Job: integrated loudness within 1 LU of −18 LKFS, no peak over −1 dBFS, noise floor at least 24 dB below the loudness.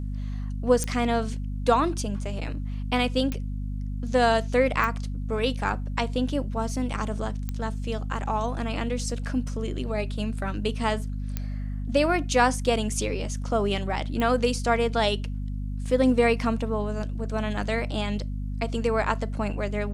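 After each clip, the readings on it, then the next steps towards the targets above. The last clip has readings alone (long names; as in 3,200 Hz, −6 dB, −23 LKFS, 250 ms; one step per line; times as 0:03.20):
number of clicks 6; mains hum 50 Hz; hum harmonics up to 250 Hz; level of the hum −28 dBFS; integrated loudness −27.0 LKFS; sample peak −7.5 dBFS; target loudness −18.0 LKFS
→ click removal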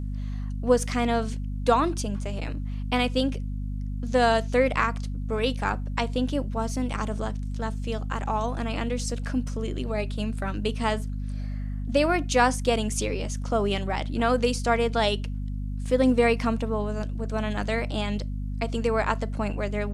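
number of clicks 0; mains hum 50 Hz; hum harmonics up to 250 Hz; level of the hum −28 dBFS
→ hum removal 50 Hz, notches 5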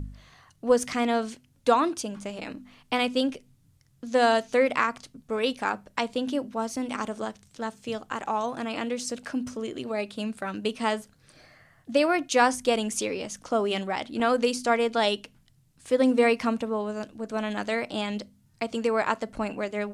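mains hum none found; integrated loudness −27.5 LKFS; sample peak −7.5 dBFS; target loudness −18.0 LKFS
→ level +9.5 dB
brickwall limiter −1 dBFS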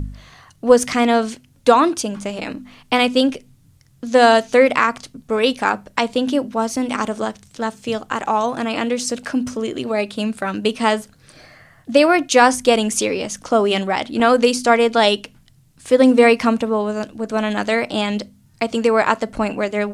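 integrated loudness −18.0 LKFS; sample peak −1.0 dBFS; background noise floor −53 dBFS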